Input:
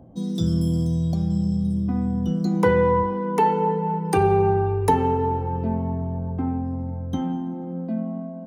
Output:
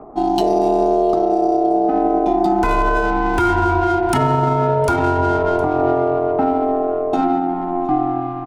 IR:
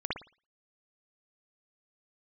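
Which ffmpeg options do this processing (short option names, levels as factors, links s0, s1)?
-filter_complex "[0:a]acrossover=split=4500[s0][s1];[s1]acontrast=32[s2];[s0][s2]amix=inputs=2:normalize=0,bandreject=f=1100:w=5.1,adynamicsmooth=sensitivity=7.5:basefreq=790,aeval=exprs='val(0)*sin(2*PI*530*n/s)':c=same,aecho=1:1:711:0.0668,alimiter=level_in=8.41:limit=0.891:release=50:level=0:latency=1,volume=0.501"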